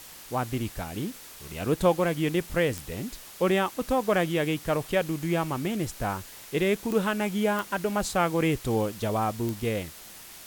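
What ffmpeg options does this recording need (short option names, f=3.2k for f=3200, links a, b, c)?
-af "adeclick=t=4,afftdn=nr=27:nf=-46"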